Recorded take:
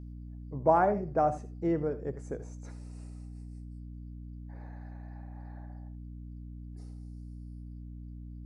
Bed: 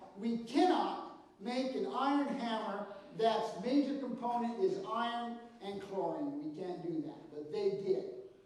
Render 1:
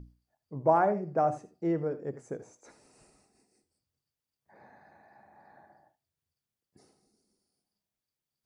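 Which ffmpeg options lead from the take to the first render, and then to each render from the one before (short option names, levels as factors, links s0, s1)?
-af "bandreject=f=60:t=h:w=6,bandreject=f=120:t=h:w=6,bandreject=f=180:t=h:w=6,bandreject=f=240:t=h:w=6,bandreject=f=300:t=h:w=6"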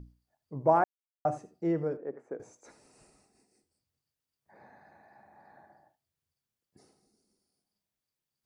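-filter_complex "[0:a]asettb=1/sr,asplit=3[s0][s1][s2];[s0]atrim=end=1.974[s3];[s1]atrim=start=1.97:end=2.4,asetpts=PTS-STARTPTS,afade=t=in:d=0.004:c=qsin,afade=t=out:st=0.426:d=0.004:c=qsin,acrossover=split=240 2300:gain=0.0794 1 0.0708[s4][s5][s6];[s4][s5][s6]amix=inputs=3:normalize=0[s7];[s2]atrim=start=2.396[s8];[s3][s7]acrossfade=d=0.004:c1=hsin:c2=qsin[s9];[s9][s8]acrossfade=d=0.004:c1=qsin:c2=hsin,asplit=3[s10][s11][s12];[s10]atrim=end=0.84,asetpts=PTS-STARTPTS,afade=t=out:st=0.836:d=0.004:c=hsin[s13];[s11]atrim=start=0.84:end=1.25,asetpts=PTS-STARTPTS,volume=0[s14];[s12]atrim=start=1.25,asetpts=PTS-STARTPTS,afade=t=in:d=0.004:c=hsin[s15];[s13][s14][s15]concat=n=3:v=0:a=1"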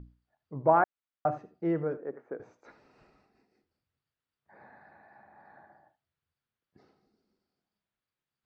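-af "lowpass=f=4000:w=0.5412,lowpass=f=4000:w=1.3066,equalizer=f=1400:t=o:w=0.8:g=5.5"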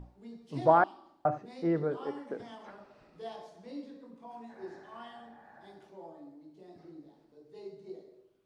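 -filter_complex "[1:a]volume=0.266[s0];[0:a][s0]amix=inputs=2:normalize=0"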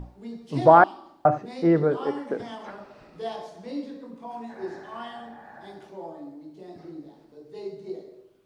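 -af "volume=2.99,alimiter=limit=0.708:level=0:latency=1"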